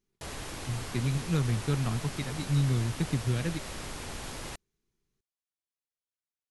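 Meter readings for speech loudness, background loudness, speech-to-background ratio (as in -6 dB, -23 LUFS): -31.0 LUFS, -39.5 LUFS, 8.5 dB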